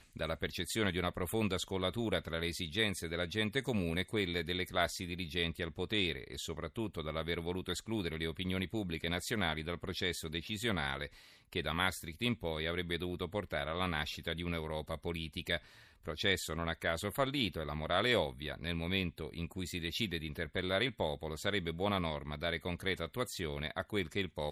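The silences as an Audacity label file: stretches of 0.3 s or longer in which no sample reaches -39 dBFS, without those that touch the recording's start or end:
11.060000	11.530000	silence
15.570000	16.080000	silence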